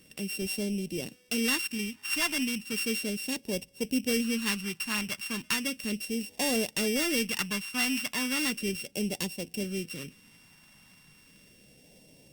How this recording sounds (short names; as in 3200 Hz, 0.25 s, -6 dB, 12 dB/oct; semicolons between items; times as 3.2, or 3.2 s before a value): a buzz of ramps at a fixed pitch in blocks of 16 samples; phasing stages 2, 0.35 Hz, lowest notch 490–1200 Hz; Opus